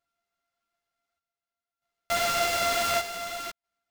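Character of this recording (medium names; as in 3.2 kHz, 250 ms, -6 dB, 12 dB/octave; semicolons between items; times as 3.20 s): a buzz of ramps at a fixed pitch in blocks of 64 samples; chopped level 0.55 Hz, depth 65%, duty 65%; aliases and images of a low sample rate 11 kHz, jitter 20%; a shimmering, thickened sound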